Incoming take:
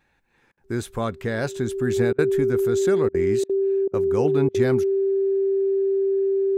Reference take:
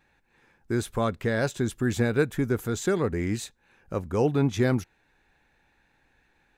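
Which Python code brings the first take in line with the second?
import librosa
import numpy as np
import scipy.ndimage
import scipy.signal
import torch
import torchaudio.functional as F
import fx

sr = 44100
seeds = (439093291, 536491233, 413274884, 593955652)

y = fx.notch(x, sr, hz=390.0, q=30.0)
y = fx.fix_interpolate(y, sr, at_s=(0.52, 2.13, 3.09, 3.44, 3.88, 4.49), length_ms=53.0)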